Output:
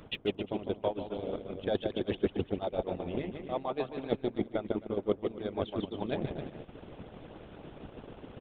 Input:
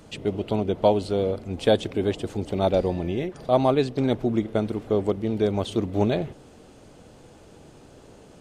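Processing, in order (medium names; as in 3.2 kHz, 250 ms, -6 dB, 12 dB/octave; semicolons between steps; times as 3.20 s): resampled via 8 kHz; reverse; compression 5:1, threshold -34 dBFS, peak gain reduction 18 dB; reverse; bouncing-ball echo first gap 150 ms, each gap 0.75×, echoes 5; harmonic-percussive split harmonic -13 dB; transient shaper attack +5 dB, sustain -8 dB; trim +3.5 dB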